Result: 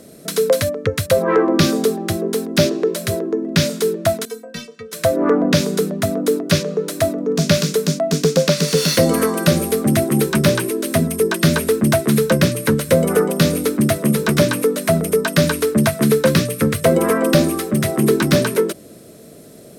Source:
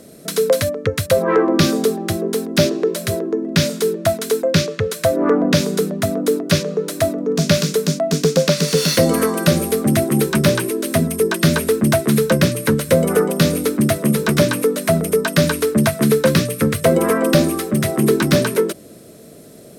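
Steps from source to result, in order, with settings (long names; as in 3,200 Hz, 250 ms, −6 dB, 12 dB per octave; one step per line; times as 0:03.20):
0:04.25–0:04.93: stiff-string resonator 230 Hz, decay 0.22 s, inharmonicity 0.008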